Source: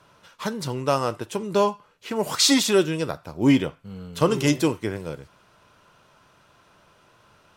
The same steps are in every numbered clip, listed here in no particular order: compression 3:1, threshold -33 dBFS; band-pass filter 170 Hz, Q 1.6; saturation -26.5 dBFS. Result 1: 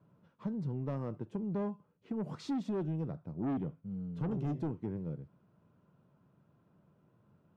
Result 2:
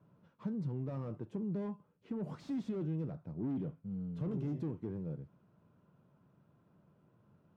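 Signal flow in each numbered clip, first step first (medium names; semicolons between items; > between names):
band-pass filter > saturation > compression; saturation > band-pass filter > compression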